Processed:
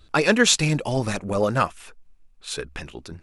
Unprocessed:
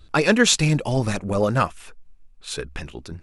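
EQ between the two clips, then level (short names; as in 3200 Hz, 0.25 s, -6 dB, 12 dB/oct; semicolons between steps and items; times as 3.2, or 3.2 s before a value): low shelf 200 Hz -5 dB; 0.0 dB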